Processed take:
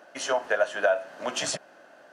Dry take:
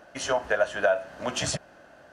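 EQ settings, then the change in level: high-pass 270 Hz 12 dB/octave; 0.0 dB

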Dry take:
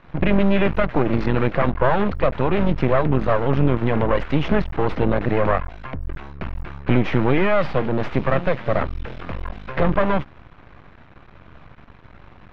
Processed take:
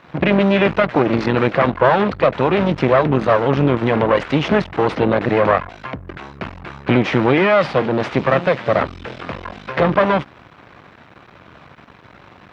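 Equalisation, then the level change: high-pass 100 Hz 12 dB/octave; tone controls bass -4 dB, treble +7 dB; +5.5 dB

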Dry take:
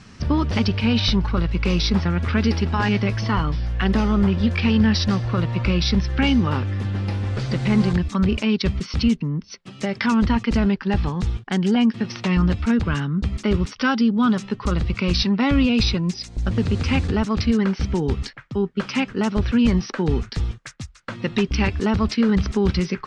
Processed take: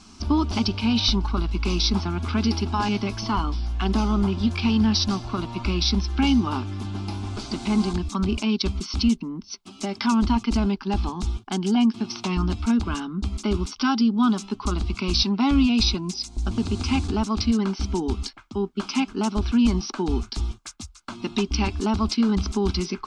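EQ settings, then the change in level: peaking EQ 2 kHz +10 dB 0.31 oct; treble shelf 4 kHz +6.5 dB; static phaser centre 510 Hz, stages 6; 0.0 dB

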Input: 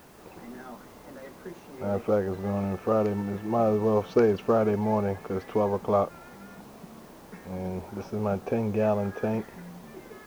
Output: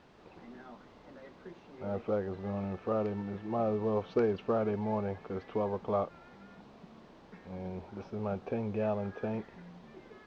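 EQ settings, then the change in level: distance through air 160 m; peaking EQ 3.7 kHz +5 dB 1.1 oct; -7.0 dB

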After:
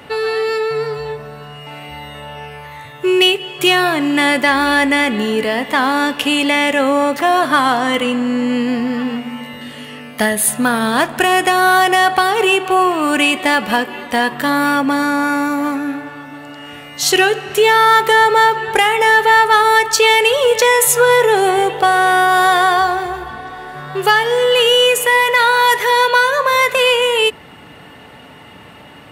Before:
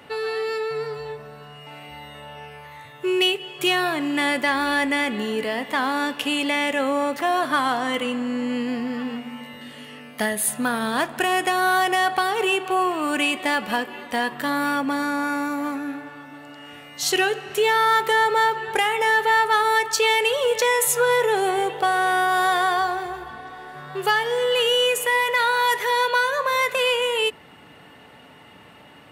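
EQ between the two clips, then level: bass shelf 88 Hz +6.5 dB; +8.0 dB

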